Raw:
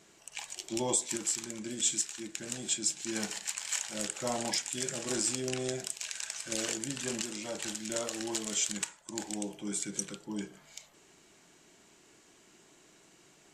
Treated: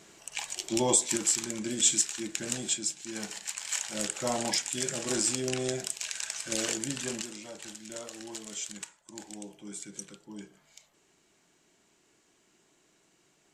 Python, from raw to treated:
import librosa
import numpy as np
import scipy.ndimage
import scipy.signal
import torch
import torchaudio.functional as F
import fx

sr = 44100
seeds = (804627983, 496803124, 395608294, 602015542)

y = fx.gain(x, sr, db=fx.line((2.54, 5.5), (3.02, -4.0), (3.98, 3.0), (6.94, 3.0), (7.55, -6.5)))